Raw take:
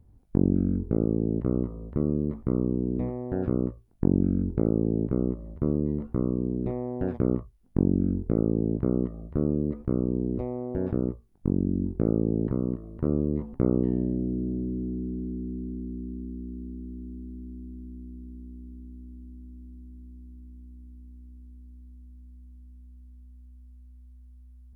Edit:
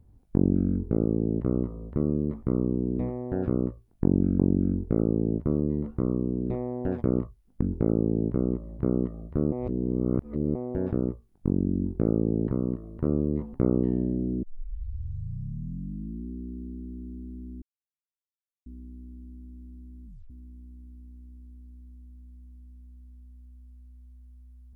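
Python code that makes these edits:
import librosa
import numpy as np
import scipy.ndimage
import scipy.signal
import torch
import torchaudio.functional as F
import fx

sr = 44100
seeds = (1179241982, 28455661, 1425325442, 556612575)

y = fx.edit(x, sr, fx.swap(start_s=4.39, length_s=1.17, other_s=7.78, other_length_s=1.01),
    fx.reverse_span(start_s=9.52, length_s=1.03),
    fx.tape_start(start_s=14.43, length_s=1.88),
    fx.silence(start_s=17.62, length_s=1.04),
    fx.tape_stop(start_s=20.05, length_s=0.25), tone=tone)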